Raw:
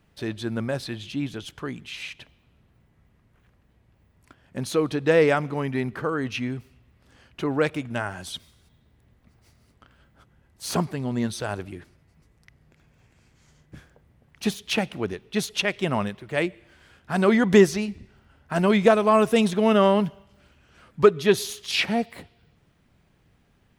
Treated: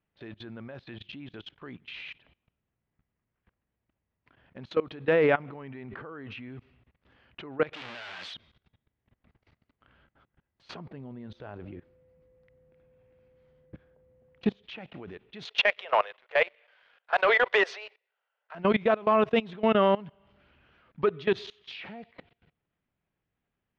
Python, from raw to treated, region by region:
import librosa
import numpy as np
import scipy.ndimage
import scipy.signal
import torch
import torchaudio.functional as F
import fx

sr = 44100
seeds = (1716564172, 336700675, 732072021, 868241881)

y = fx.chain(x, sr, fx.high_shelf(hz=3700.0, db=-5.5),
    fx.sustainer(db_per_s=35.0), at=(5.13, 6.49))
y = fx.chain(y, sr, fx.clip_1bit(),
    fx.tilt_eq(slope=4.0), at=(7.73, 8.34))
y = fx.tilt_shelf(y, sr, db=5.0, hz=930.0, at=(10.79, 14.62), fade=0.02)
y = fx.dmg_tone(y, sr, hz=510.0, level_db=-51.0, at=(10.79, 14.62), fade=0.02)
y = fx.chain(y, sr, fx.steep_highpass(hz=450.0, slope=72),
    fx.high_shelf(hz=3700.0, db=5.0),
    fx.leveller(passes=2), at=(15.45, 18.55))
y = scipy.signal.sosfilt(scipy.signal.butter(4, 3400.0, 'lowpass', fs=sr, output='sos'), y)
y = fx.low_shelf(y, sr, hz=260.0, db=-5.5)
y = fx.level_steps(y, sr, step_db=21)